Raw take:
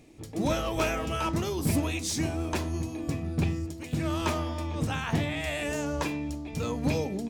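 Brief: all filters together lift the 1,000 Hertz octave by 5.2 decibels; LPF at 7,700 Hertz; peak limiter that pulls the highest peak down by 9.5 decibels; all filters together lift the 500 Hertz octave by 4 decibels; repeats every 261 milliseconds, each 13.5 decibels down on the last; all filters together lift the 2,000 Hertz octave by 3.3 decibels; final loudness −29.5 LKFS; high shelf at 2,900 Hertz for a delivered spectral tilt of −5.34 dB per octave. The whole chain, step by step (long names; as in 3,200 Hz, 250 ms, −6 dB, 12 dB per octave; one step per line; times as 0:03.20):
low-pass filter 7,700 Hz
parametric band 500 Hz +3.5 dB
parametric band 1,000 Hz +5 dB
parametric band 2,000 Hz +4.5 dB
high-shelf EQ 2,900 Hz −4 dB
brickwall limiter −21.5 dBFS
repeating echo 261 ms, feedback 21%, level −13.5 dB
level +1.5 dB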